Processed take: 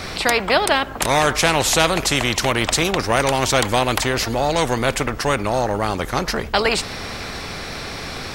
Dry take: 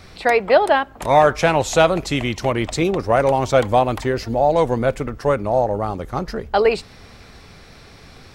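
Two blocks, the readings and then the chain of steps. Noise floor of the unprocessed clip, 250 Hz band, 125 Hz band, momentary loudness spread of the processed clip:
-44 dBFS, 0.0 dB, 0.0 dB, 12 LU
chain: spectrum-flattening compressor 2:1

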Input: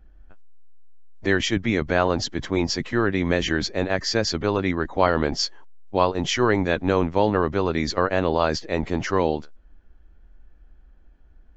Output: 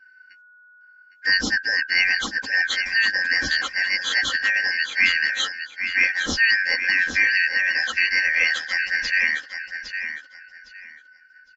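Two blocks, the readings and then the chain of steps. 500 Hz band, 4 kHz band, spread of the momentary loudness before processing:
-21.5 dB, +5.0 dB, 5 LU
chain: four frequency bands reordered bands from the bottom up 3142; comb 3.8 ms, depth 93%; feedback delay 809 ms, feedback 22%, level -8.5 dB; trim -2.5 dB

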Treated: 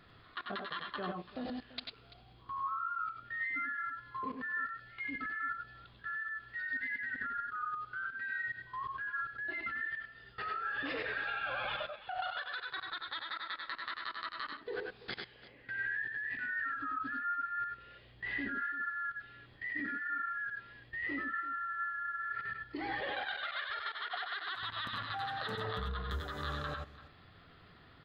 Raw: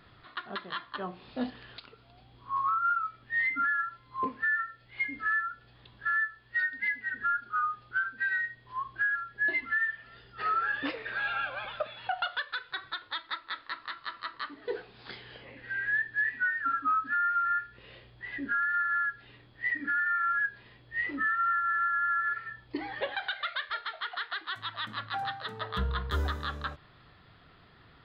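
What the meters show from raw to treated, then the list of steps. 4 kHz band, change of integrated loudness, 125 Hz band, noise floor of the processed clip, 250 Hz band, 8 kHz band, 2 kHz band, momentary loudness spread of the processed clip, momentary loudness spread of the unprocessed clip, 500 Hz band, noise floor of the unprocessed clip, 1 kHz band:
-3.0 dB, -7.0 dB, -6.0 dB, -59 dBFS, -3.5 dB, no reading, -7.0 dB, 8 LU, 12 LU, -3.0 dB, -58 dBFS, -7.5 dB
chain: band-stop 940 Hz, Q 17; level held to a coarse grid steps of 22 dB; multi-tap echo 90/102/338 ms -6.5/-5.5/-17 dB; trim +5 dB

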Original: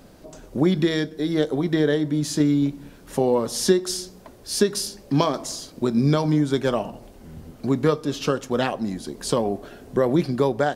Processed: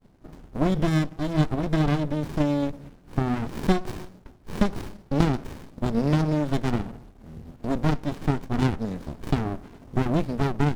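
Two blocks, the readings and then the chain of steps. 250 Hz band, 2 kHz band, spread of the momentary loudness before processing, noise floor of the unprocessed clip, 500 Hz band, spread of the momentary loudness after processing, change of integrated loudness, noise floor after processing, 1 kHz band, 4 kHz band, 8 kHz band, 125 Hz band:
-3.0 dB, -3.0 dB, 11 LU, -47 dBFS, -8.0 dB, 16 LU, -3.0 dB, -52 dBFS, -2.0 dB, -9.0 dB, -16.0 dB, +1.5 dB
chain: expander -42 dBFS; sliding maximum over 65 samples

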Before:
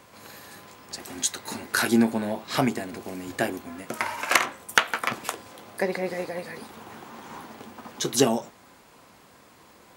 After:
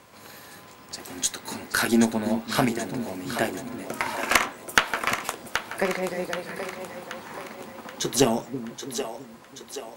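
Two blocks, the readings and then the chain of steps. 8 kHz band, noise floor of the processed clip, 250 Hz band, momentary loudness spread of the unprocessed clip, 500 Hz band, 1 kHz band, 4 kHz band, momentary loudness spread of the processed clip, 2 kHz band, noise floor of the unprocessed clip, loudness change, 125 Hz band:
+1.0 dB, -48 dBFS, +1.0 dB, 20 LU, +1.0 dB, +1.0 dB, +1.0 dB, 17 LU, +1.0 dB, -54 dBFS, 0.0 dB, +1.0 dB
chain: two-band feedback delay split 350 Hz, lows 331 ms, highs 778 ms, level -8.5 dB; Chebyshev shaper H 4 -21 dB, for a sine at -2.5 dBFS

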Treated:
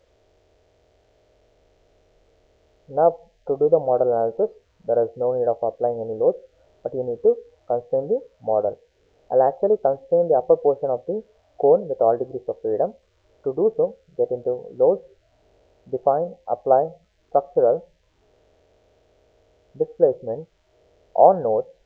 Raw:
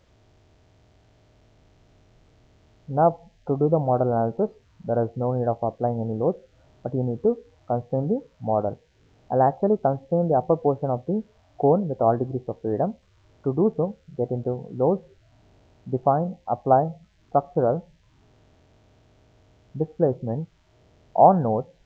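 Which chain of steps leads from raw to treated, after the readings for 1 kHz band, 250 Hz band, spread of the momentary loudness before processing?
-0.5 dB, -6.5 dB, 10 LU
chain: ten-band graphic EQ 125 Hz -10 dB, 250 Hz -7 dB, 500 Hz +11 dB, 1 kHz -4 dB; trim -2 dB

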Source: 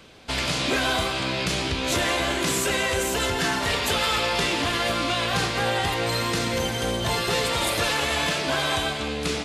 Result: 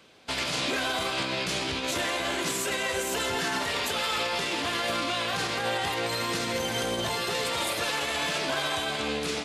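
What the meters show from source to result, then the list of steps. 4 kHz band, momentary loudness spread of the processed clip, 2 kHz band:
-4.0 dB, 1 LU, -4.0 dB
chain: high-pass 210 Hz 6 dB/octave; peak limiter -23 dBFS, peak gain reduction 10 dB; upward expansion 1.5:1, over -49 dBFS; trim +3.5 dB

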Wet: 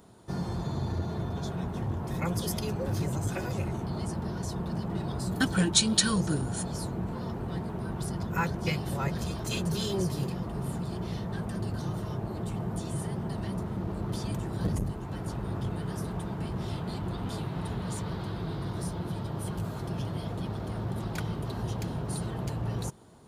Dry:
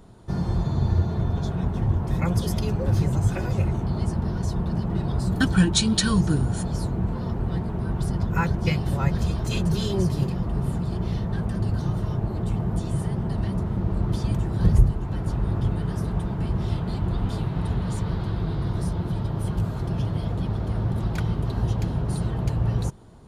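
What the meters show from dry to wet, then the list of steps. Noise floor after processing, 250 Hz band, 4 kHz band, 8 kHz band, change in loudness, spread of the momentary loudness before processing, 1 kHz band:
-37 dBFS, -6.0 dB, -1.5 dB, +1.0 dB, -7.0 dB, 6 LU, -3.0 dB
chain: high-pass 190 Hz 6 dB/octave; treble shelf 7.2 kHz +7.5 dB; transformer saturation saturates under 570 Hz; trim -2.5 dB

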